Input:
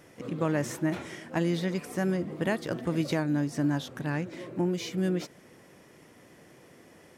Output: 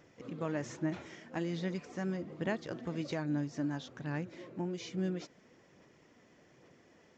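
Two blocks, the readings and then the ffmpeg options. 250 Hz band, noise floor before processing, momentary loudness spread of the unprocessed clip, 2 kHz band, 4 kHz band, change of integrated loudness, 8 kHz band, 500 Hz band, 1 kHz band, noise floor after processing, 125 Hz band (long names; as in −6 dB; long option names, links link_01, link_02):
−7.5 dB, −56 dBFS, 6 LU, −7.5 dB, −8.0 dB, −7.5 dB, −10.0 dB, −8.0 dB, −7.5 dB, −64 dBFS, −8.0 dB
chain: -af "aphaser=in_gain=1:out_gain=1:delay=4.6:decay=0.27:speed=1.2:type=sinusoidal,aresample=16000,aresample=44100,volume=-8.5dB"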